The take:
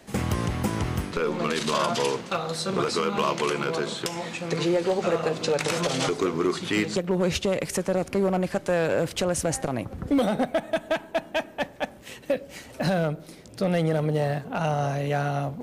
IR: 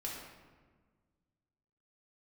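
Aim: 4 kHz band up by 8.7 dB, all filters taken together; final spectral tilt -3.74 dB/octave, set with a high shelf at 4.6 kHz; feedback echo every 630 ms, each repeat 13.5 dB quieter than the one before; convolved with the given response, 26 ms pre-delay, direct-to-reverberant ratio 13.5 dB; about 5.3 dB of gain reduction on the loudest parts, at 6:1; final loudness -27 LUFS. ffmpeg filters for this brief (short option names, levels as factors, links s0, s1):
-filter_complex "[0:a]equalizer=f=4000:t=o:g=8,highshelf=f=4600:g=5.5,acompressor=threshold=0.0631:ratio=6,aecho=1:1:630|1260:0.211|0.0444,asplit=2[s0][s1];[1:a]atrim=start_sample=2205,adelay=26[s2];[s1][s2]afir=irnorm=-1:irlink=0,volume=0.2[s3];[s0][s3]amix=inputs=2:normalize=0,volume=1.12"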